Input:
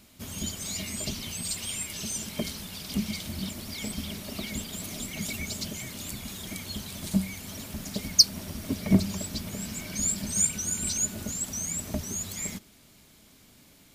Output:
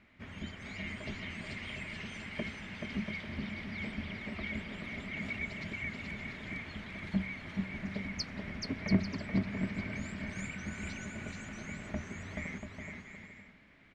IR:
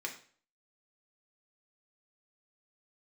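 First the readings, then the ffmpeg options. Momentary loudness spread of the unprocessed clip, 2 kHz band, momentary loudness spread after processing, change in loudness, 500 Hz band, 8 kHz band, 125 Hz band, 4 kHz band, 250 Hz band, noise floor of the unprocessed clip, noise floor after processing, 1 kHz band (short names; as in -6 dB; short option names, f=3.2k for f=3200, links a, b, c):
12 LU, +3.0 dB, 9 LU, -9.0 dB, -4.5 dB, -26.5 dB, -5.0 dB, -16.0 dB, -5.0 dB, -57 dBFS, -55 dBFS, -2.5 dB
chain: -filter_complex "[0:a]lowpass=f=2k:t=q:w=3.5,asplit=2[a][b];[b]aecho=0:1:430|688|842.8|935.7|991.4:0.631|0.398|0.251|0.158|0.1[c];[a][c]amix=inputs=2:normalize=0,volume=-7dB"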